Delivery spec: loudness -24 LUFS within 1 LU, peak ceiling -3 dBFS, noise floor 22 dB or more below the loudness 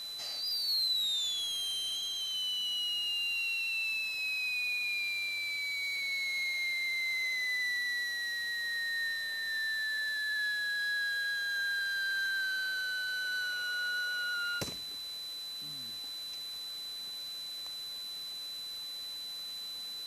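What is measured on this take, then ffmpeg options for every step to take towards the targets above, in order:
steady tone 4000 Hz; tone level -39 dBFS; noise floor -42 dBFS; noise floor target -55 dBFS; loudness -32.5 LUFS; peak -24.5 dBFS; loudness target -24.0 LUFS
-> -af "bandreject=f=4k:w=30"
-af "afftdn=nr=13:nf=-42"
-af "volume=8.5dB"

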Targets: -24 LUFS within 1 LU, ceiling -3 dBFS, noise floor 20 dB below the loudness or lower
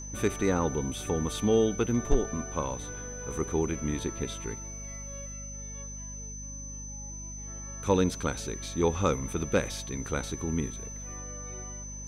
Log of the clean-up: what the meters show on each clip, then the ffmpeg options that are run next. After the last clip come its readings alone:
hum 50 Hz; harmonics up to 250 Hz; hum level -40 dBFS; steady tone 6100 Hz; tone level -41 dBFS; loudness -31.5 LUFS; peak -13.0 dBFS; loudness target -24.0 LUFS
-> -af "bandreject=f=50:t=h:w=4,bandreject=f=100:t=h:w=4,bandreject=f=150:t=h:w=4,bandreject=f=200:t=h:w=4,bandreject=f=250:t=h:w=4"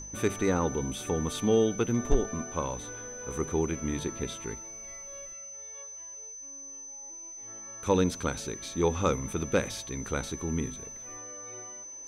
hum none; steady tone 6100 Hz; tone level -41 dBFS
-> -af "bandreject=f=6.1k:w=30"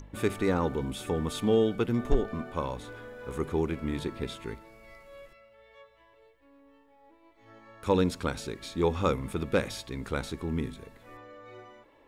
steady tone none; loudness -30.5 LUFS; peak -13.0 dBFS; loudness target -24.0 LUFS
-> -af "volume=6.5dB"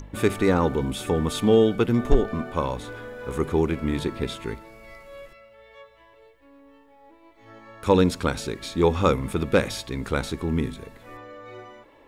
loudness -24.0 LUFS; peak -6.5 dBFS; noise floor -54 dBFS

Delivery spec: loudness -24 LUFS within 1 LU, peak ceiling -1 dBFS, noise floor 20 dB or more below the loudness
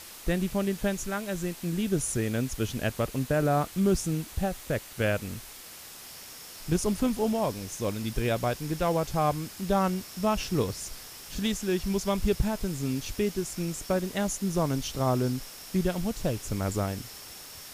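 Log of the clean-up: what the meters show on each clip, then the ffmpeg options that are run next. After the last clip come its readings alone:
noise floor -45 dBFS; noise floor target -50 dBFS; loudness -29.5 LUFS; peak -13.0 dBFS; loudness target -24.0 LUFS
-> -af "afftdn=nr=6:nf=-45"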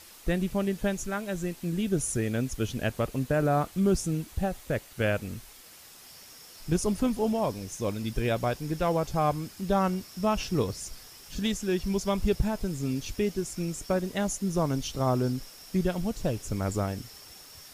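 noise floor -50 dBFS; loudness -29.5 LUFS; peak -13.0 dBFS; loudness target -24.0 LUFS
-> -af "volume=5.5dB"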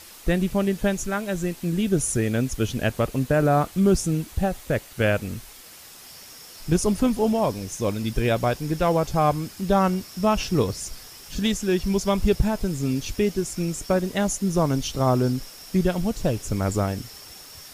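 loudness -24.0 LUFS; peak -7.5 dBFS; noise floor -45 dBFS

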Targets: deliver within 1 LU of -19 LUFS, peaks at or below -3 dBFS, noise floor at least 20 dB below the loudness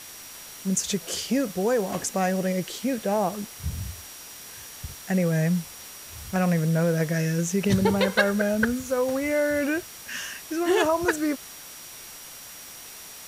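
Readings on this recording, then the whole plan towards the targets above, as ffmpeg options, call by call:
steady tone 5700 Hz; tone level -48 dBFS; noise floor -43 dBFS; noise floor target -46 dBFS; loudness -25.5 LUFS; peak -5.5 dBFS; loudness target -19.0 LUFS
-> -af "bandreject=f=5.7k:w=30"
-af "afftdn=nr=6:nf=-43"
-af "volume=6.5dB,alimiter=limit=-3dB:level=0:latency=1"

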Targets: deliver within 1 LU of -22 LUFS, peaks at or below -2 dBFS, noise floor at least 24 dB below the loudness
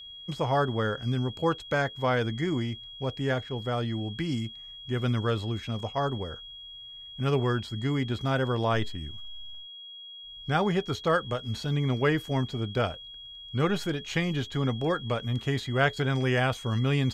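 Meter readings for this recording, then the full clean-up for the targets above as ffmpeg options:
steady tone 3300 Hz; tone level -42 dBFS; loudness -29.0 LUFS; peak -10.5 dBFS; loudness target -22.0 LUFS
-> -af "bandreject=f=3.3k:w=30"
-af "volume=7dB"

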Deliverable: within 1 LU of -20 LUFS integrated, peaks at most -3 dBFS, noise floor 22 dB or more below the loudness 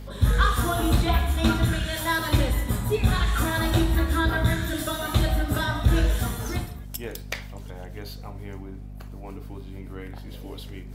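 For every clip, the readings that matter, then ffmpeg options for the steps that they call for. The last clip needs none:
hum 50 Hz; harmonics up to 250 Hz; hum level -35 dBFS; loudness -24.5 LUFS; peak -9.0 dBFS; loudness target -20.0 LUFS
-> -af "bandreject=f=50:t=h:w=4,bandreject=f=100:t=h:w=4,bandreject=f=150:t=h:w=4,bandreject=f=200:t=h:w=4,bandreject=f=250:t=h:w=4"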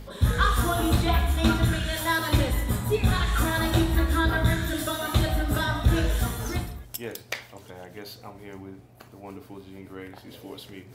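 hum none; loudness -25.5 LUFS; peak -9.5 dBFS; loudness target -20.0 LUFS
-> -af "volume=5.5dB"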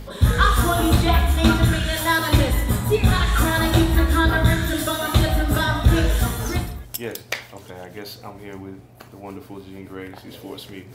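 loudness -20.0 LUFS; peak -4.0 dBFS; noise floor -44 dBFS

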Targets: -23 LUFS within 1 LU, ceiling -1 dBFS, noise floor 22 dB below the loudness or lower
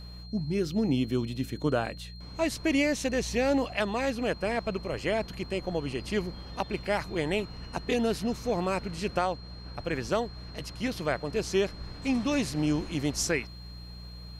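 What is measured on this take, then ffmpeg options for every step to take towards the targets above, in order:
hum 60 Hz; harmonics up to 180 Hz; hum level -41 dBFS; steady tone 4200 Hz; tone level -49 dBFS; loudness -30.0 LUFS; peak -12.5 dBFS; loudness target -23.0 LUFS
-> -af "bandreject=f=60:t=h:w=4,bandreject=f=120:t=h:w=4,bandreject=f=180:t=h:w=4"
-af "bandreject=f=4.2k:w=30"
-af "volume=7dB"

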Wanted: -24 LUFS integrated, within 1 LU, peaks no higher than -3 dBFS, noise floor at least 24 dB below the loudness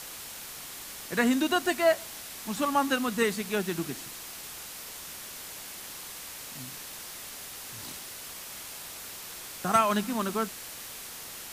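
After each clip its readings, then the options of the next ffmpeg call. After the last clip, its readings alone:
noise floor -42 dBFS; noise floor target -56 dBFS; loudness -31.5 LUFS; peak -12.0 dBFS; loudness target -24.0 LUFS
-> -af "afftdn=nr=14:nf=-42"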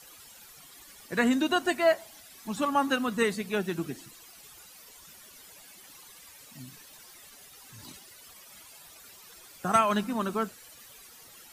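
noise floor -52 dBFS; loudness -28.0 LUFS; peak -12.0 dBFS; loudness target -24.0 LUFS
-> -af "volume=4dB"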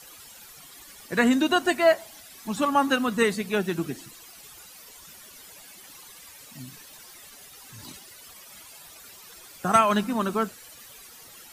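loudness -24.0 LUFS; peak -8.0 dBFS; noise floor -48 dBFS

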